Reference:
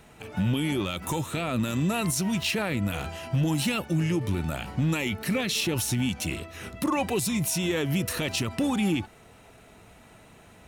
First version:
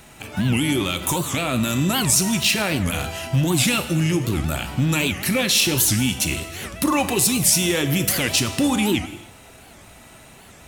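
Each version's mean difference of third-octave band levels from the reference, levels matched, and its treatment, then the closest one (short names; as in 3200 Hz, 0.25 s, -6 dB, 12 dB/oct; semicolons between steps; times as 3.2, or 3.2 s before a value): 4.0 dB: high shelf 3500 Hz +8 dB; notch 450 Hz, Q 12; non-linear reverb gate 0.33 s falling, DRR 8.5 dB; record warp 78 rpm, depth 250 cents; gain +5 dB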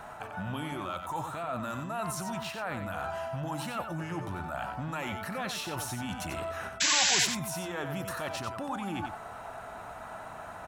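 7.0 dB: band shelf 1000 Hz +14.5 dB; reverse; compressor 6:1, threshold -34 dBFS, peak gain reduction 20.5 dB; reverse; painted sound noise, 6.8–7.26, 1400–7800 Hz -26 dBFS; echo 92 ms -7.5 dB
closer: first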